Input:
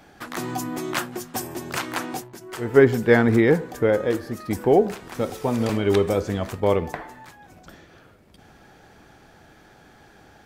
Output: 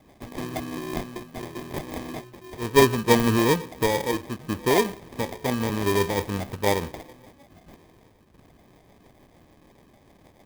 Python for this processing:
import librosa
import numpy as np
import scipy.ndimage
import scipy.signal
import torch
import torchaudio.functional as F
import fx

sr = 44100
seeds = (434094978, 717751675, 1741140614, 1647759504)

y = fx.rotary(x, sr, hz=6.7)
y = fx.sample_hold(y, sr, seeds[0], rate_hz=1400.0, jitter_pct=0)
y = fx.clock_jitter(y, sr, seeds[1], jitter_ms=0.025)
y = F.gain(torch.from_numpy(y), -1.5).numpy()